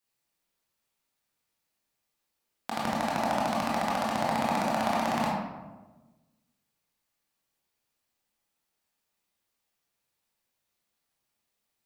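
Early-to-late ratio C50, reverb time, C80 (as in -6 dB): -0.5 dB, 1.2 s, 3.0 dB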